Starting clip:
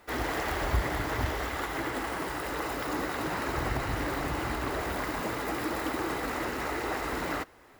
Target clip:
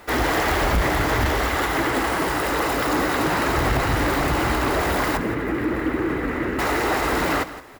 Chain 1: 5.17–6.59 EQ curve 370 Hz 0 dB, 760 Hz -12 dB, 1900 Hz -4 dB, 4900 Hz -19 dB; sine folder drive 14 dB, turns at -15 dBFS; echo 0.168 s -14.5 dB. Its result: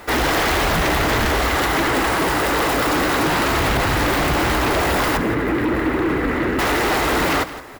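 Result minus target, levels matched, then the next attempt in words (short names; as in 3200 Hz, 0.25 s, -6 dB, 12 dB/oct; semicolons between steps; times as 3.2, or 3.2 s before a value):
sine folder: distortion +10 dB
5.17–6.59 EQ curve 370 Hz 0 dB, 760 Hz -12 dB, 1900 Hz -4 dB, 4900 Hz -19 dB; sine folder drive 8 dB, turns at -15 dBFS; echo 0.168 s -14.5 dB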